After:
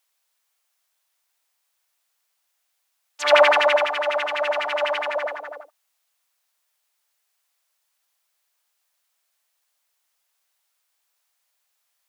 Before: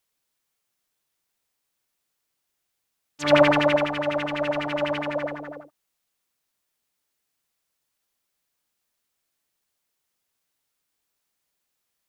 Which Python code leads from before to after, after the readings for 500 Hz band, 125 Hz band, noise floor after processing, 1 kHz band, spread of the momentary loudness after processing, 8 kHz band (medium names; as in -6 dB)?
+2.0 dB, under -40 dB, -74 dBFS, +5.0 dB, 14 LU, no reading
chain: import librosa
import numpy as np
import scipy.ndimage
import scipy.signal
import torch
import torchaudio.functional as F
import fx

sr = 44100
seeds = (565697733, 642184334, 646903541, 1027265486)

y = scipy.signal.sosfilt(scipy.signal.butter(4, 590.0, 'highpass', fs=sr, output='sos'), x)
y = y * 10.0 ** (5.0 / 20.0)